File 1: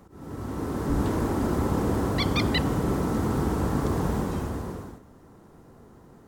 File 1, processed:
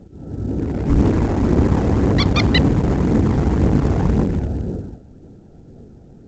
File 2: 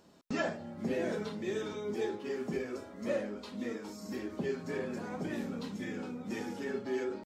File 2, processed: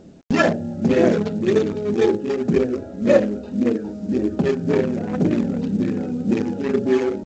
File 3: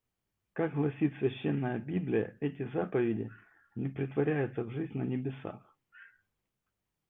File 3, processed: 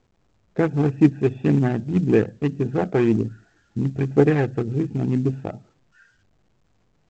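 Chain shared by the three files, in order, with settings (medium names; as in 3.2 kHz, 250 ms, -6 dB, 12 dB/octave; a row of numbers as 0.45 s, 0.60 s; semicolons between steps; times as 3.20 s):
local Wiener filter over 41 samples; phaser 1.9 Hz, delay 1.6 ms, feedback 30%; µ-law 128 kbps 16 kHz; peak normalisation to -2 dBFS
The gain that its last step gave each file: +9.0 dB, +17.5 dB, +12.0 dB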